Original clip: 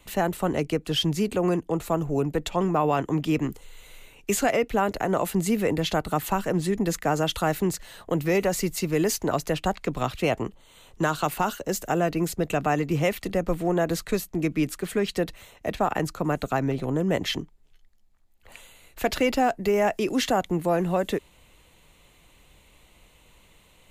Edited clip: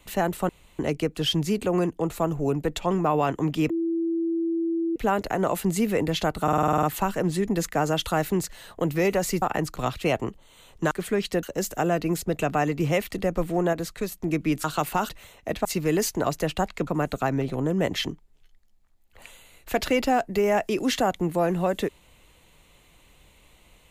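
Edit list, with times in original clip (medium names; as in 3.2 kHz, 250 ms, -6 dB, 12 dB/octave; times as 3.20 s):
0.49 s: insert room tone 0.30 s
3.40–4.66 s: bleep 332 Hz -22.5 dBFS
6.13 s: stutter 0.05 s, 9 plays
8.72–9.94 s: swap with 15.83–16.17 s
11.09–11.54 s: swap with 14.75–15.27 s
13.84–14.23 s: gain -4 dB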